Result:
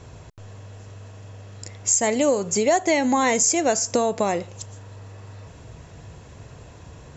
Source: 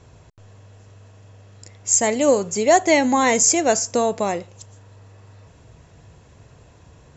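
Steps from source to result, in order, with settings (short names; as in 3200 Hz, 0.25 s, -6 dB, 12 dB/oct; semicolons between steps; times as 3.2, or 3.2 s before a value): compressor 3:1, threshold -25 dBFS, peak gain reduction 11 dB; gain +5.5 dB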